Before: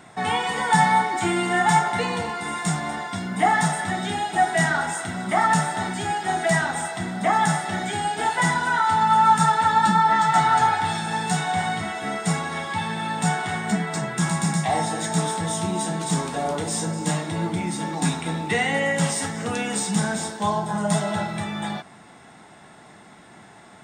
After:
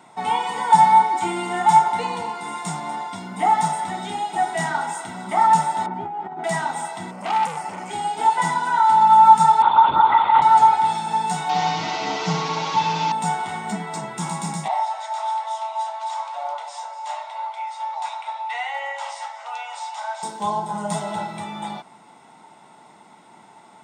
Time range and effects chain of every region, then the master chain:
0:05.86–0:06.44: low-pass filter 1,200 Hz + compressor whose output falls as the input rises −29 dBFS
0:07.11–0:07.91: Butterworth band-reject 3,600 Hz, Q 2.8 + saturating transformer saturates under 2,300 Hz
0:09.62–0:10.42: notch filter 870 Hz, Q 24 + comb filter 2 ms, depth 87% + linear-prediction vocoder at 8 kHz whisper
0:11.49–0:13.12: linear delta modulator 32 kbit/s, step −21 dBFS + comb filter 6.5 ms, depth 97% + flutter between parallel walls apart 10.5 metres, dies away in 0.46 s
0:14.68–0:20.23: Butterworth high-pass 590 Hz 72 dB per octave + high-frequency loss of the air 130 metres
whole clip: high-pass filter 170 Hz 12 dB per octave; parametric band 910 Hz +13 dB 0.2 octaves; notch filter 1,700 Hz, Q 5.6; level −3.5 dB

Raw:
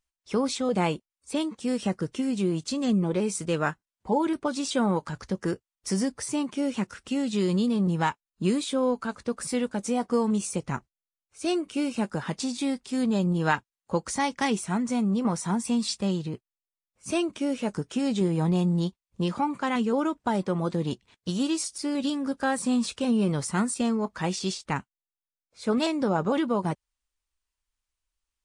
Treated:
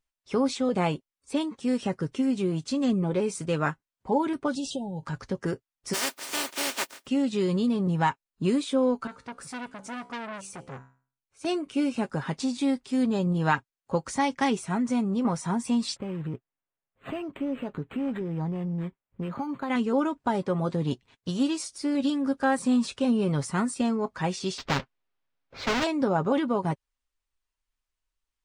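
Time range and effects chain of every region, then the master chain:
0:04.55–0:05.03: low shelf with overshoot 200 Hz +8.5 dB, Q 1.5 + downward compressor 16 to 1, threshold −28 dBFS + linear-phase brick-wall band-stop 920–2,600 Hz
0:05.93–0:07.05: compressing power law on the bin magnitudes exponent 0.16 + high-pass filter 280 Hz + comb filter 3.3 ms, depth 33%
0:09.07–0:11.45: tuned comb filter 65 Hz, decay 0.41 s, mix 50% + saturating transformer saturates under 2,300 Hz
0:15.96–0:19.70: downward compressor 4 to 1, threshold −28 dBFS + linearly interpolated sample-rate reduction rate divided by 8×
0:24.58–0:25.84: each half-wave held at its own peak + high-frequency loss of the air 200 metres + every bin compressed towards the loudest bin 2 to 1
whole clip: high-shelf EQ 4,700 Hz −7 dB; comb filter 7.4 ms, depth 38%

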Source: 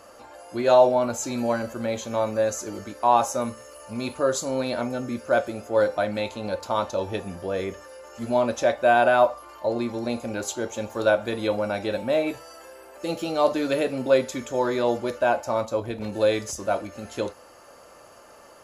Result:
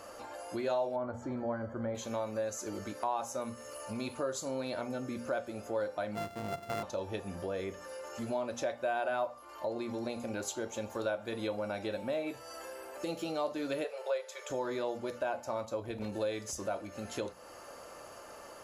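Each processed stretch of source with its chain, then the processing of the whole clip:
0:00.96–0:01.95: Savitzky-Golay smoothing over 41 samples + parametric band 81 Hz +9.5 dB 1.2 octaves
0:06.15–0:06.83: samples sorted by size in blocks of 64 samples + high-shelf EQ 2,100 Hz −10.5 dB
0:13.84–0:14.50: Butterworth high-pass 430 Hz 72 dB per octave + high-shelf EQ 5,600 Hz −4.5 dB
whole clip: mains-hum notches 60/120/180/240 Hz; downward compressor 2.5 to 1, threshold −38 dBFS

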